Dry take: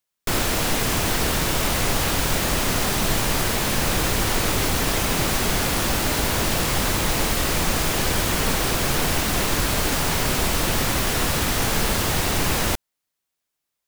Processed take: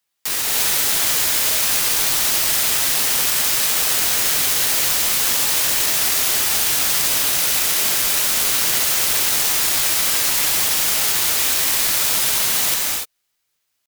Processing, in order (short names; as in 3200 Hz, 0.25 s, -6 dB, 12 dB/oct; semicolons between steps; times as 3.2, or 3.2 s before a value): RIAA curve recording; pitch shift +4 st; non-linear reverb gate 0.32 s rising, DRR -1.5 dB; careless resampling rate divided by 2×, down none, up zero stuff; gain -9.5 dB